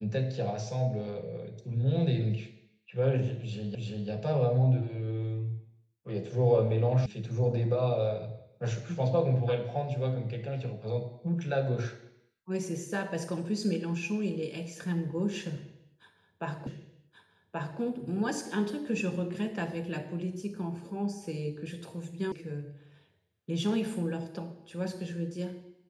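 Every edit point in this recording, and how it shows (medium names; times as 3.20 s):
3.75 s: repeat of the last 0.34 s
7.06 s: sound stops dead
16.67 s: repeat of the last 1.13 s
22.32 s: sound stops dead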